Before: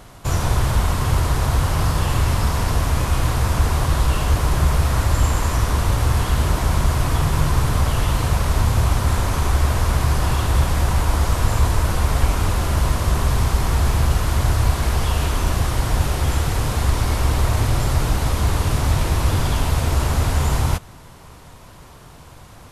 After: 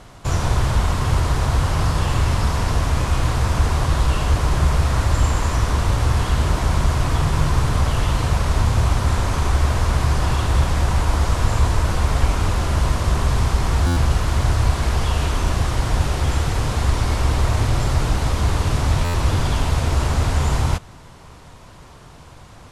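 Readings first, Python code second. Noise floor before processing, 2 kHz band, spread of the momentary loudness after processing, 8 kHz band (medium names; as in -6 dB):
-43 dBFS, 0.0 dB, 2 LU, -2.0 dB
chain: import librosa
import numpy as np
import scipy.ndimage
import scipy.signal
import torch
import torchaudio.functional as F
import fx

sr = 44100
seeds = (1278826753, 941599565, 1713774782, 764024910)

y = scipy.signal.sosfilt(scipy.signal.butter(2, 8600.0, 'lowpass', fs=sr, output='sos'), x)
y = fx.buffer_glitch(y, sr, at_s=(13.86, 19.04), block=512, repeats=8)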